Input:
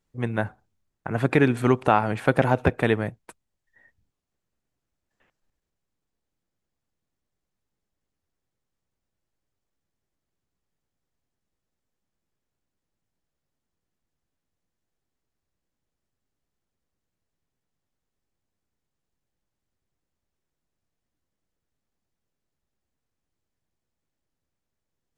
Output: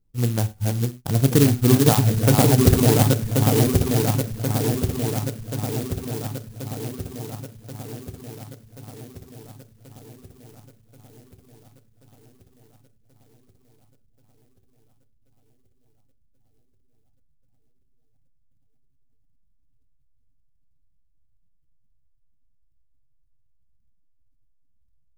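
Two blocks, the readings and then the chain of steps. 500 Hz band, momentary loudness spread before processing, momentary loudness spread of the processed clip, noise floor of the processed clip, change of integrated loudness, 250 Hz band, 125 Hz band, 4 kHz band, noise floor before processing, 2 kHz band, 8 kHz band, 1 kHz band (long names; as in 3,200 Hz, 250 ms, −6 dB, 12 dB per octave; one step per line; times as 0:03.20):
+3.0 dB, 12 LU, 20 LU, −60 dBFS, +3.0 dB, +7.0 dB, +11.0 dB, +13.5 dB, −84 dBFS, −3.5 dB, +25.0 dB, −1.0 dB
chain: feedback delay that plays each chunk backwards 541 ms, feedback 77%, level −1.5 dB
gate on every frequency bin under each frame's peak −25 dB strong
low-shelf EQ 490 Hz +10.5 dB
reverb reduction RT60 0.62 s
low-shelf EQ 68 Hz +9.5 dB
reverb whose tail is shaped and stops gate 130 ms falling, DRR 7.5 dB
converter with an unsteady clock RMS 0.15 ms
level −5.5 dB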